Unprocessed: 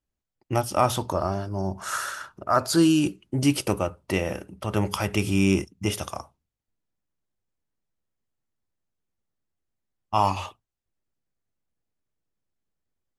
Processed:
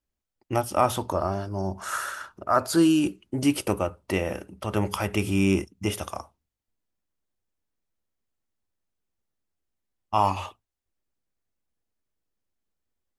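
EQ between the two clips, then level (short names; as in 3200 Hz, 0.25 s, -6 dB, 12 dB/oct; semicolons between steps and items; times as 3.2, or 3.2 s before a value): bell 140 Hz -7 dB 0.5 oct; dynamic EQ 5100 Hz, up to -5 dB, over -43 dBFS, Q 0.97; 0.0 dB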